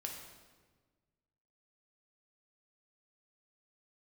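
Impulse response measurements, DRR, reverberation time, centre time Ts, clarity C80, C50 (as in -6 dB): 0.5 dB, 1.4 s, 47 ms, 6.0 dB, 4.0 dB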